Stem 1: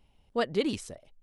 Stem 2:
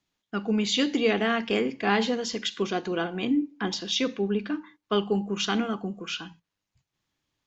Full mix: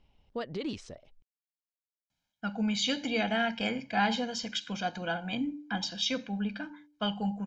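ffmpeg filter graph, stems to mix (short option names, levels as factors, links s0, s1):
-filter_complex "[0:a]lowpass=f=6100:w=0.5412,lowpass=f=6100:w=1.3066,alimiter=level_in=1.12:limit=0.0631:level=0:latency=1:release=77,volume=0.891,volume=0.841[s0];[1:a]aecho=1:1:1.3:0.93,bandreject=f=295.9:t=h:w=4,bandreject=f=591.8:t=h:w=4,adelay=2100,volume=0.501[s1];[s0][s1]amix=inputs=2:normalize=0"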